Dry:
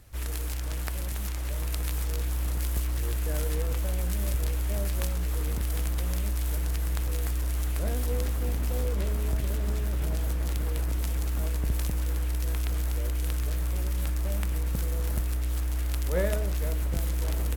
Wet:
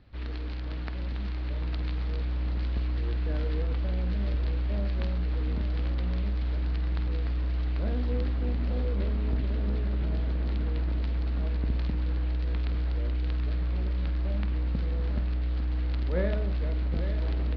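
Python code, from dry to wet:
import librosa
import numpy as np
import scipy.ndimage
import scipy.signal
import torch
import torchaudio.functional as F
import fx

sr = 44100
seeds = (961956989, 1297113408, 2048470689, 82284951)

y = scipy.signal.sosfilt(scipy.signal.ellip(4, 1.0, 50, 4400.0, 'lowpass', fs=sr, output='sos'), x)
y = fx.peak_eq(y, sr, hz=240.0, db=8.5, octaves=1.2)
y = fx.doubler(y, sr, ms=49.0, db=-12)
y = y + 10.0 ** (-10.5 / 20.0) * np.pad(y, (int(850 * sr / 1000.0), 0))[:len(y)]
y = y * librosa.db_to_amplitude(-3.5)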